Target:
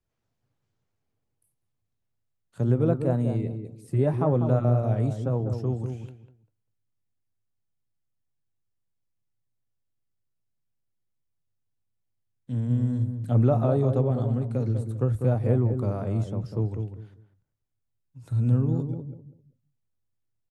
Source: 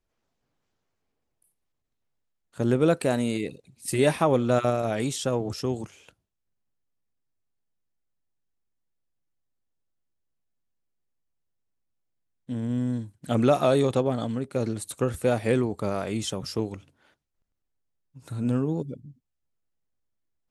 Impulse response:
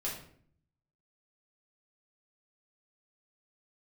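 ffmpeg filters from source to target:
-filter_complex "[0:a]equalizer=f=110:t=o:w=0.83:g=14,acrossover=split=140|1300[s0][s1][s2];[s2]acompressor=threshold=0.00224:ratio=5[s3];[s0][s1][s3]amix=inputs=3:normalize=0,flanger=delay=3.5:depth=4.9:regen=-84:speed=1.1:shape=triangular,asplit=2[s4][s5];[s5]adelay=197,lowpass=f=940:p=1,volume=0.501,asplit=2[s6][s7];[s7]adelay=197,lowpass=f=940:p=1,volume=0.24,asplit=2[s8][s9];[s9]adelay=197,lowpass=f=940:p=1,volume=0.24[s10];[s4][s6][s8][s10]amix=inputs=4:normalize=0"

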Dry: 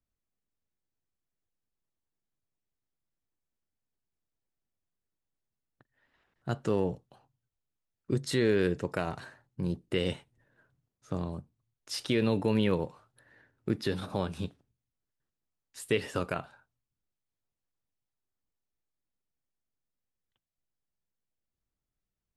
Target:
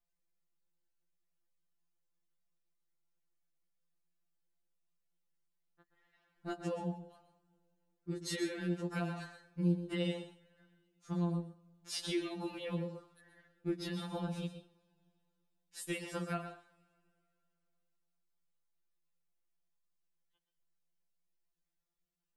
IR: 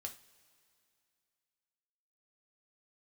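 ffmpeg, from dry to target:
-filter_complex "[0:a]acompressor=threshold=0.0316:ratio=6,asplit=2[s0][s1];[1:a]atrim=start_sample=2205,adelay=124[s2];[s1][s2]afir=irnorm=-1:irlink=0,volume=0.501[s3];[s0][s3]amix=inputs=2:normalize=0,afftfilt=real='re*2.83*eq(mod(b,8),0)':imag='im*2.83*eq(mod(b,8),0)':win_size=2048:overlap=0.75"

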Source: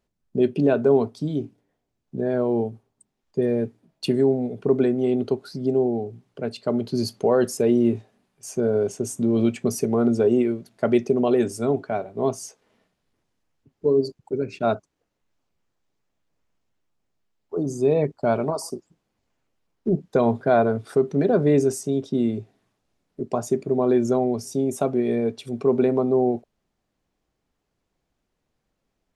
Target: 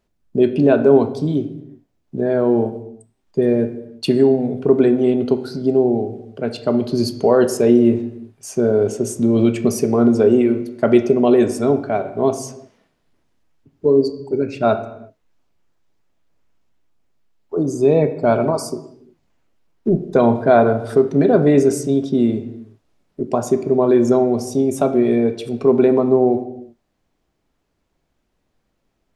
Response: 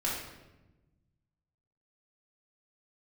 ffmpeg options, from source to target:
-filter_complex "[0:a]asplit=2[s0][s1];[1:a]atrim=start_sample=2205,afade=t=out:st=0.42:d=0.01,atrim=end_sample=18963,lowpass=5400[s2];[s1][s2]afir=irnorm=-1:irlink=0,volume=0.224[s3];[s0][s3]amix=inputs=2:normalize=0,volume=1.58"

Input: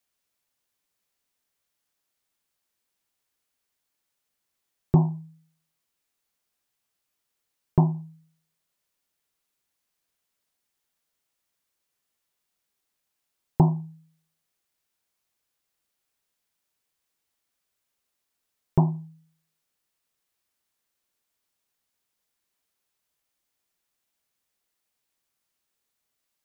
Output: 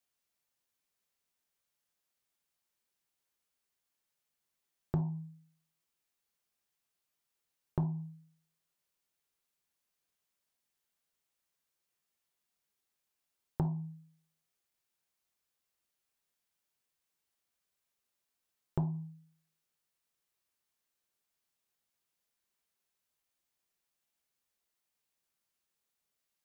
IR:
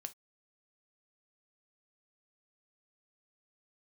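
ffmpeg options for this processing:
-filter_complex "[0:a]acompressor=threshold=0.0562:ratio=12[s0];[1:a]atrim=start_sample=2205[s1];[s0][s1]afir=irnorm=-1:irlink=0,volume=0.841"

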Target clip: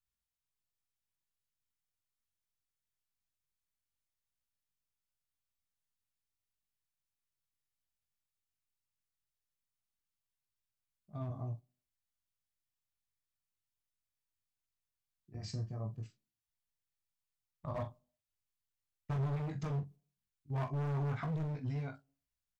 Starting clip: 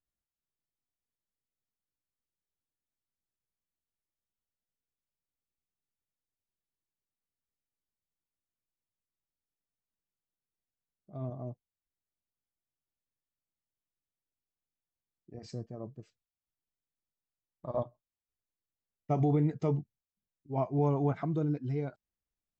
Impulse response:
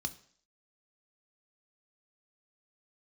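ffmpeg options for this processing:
-filter_complex "[0:a]flanger=delay=18.5:depth=3.2:speed=0.18,agate=range=0.501:threshold=0.00224:ratio=16:detection=peak,equalizer=f=470:t=o:w=1.6:g=-12.5,asoftclip=type=hard:threshold=0.0106,acompressor=threshold=0.00501:ratio=3,asplit=2[s0][s1];[s1]adelay=44,volume=0.282[s2];[s0][s2]amix=inputs=2:normalize=0,asplit=2[s3][s4];[1:a]atrim=start_sample=2205,lowpass=f=1100:w=0.5412,lowpass=f=1100:w=1.3066[s5];[s4][s5]afir=irnorm=-1:irlink=0,volume=0.188[s6];[s3][s6]amix=inputs=2:normalize=0,volume=2.82"

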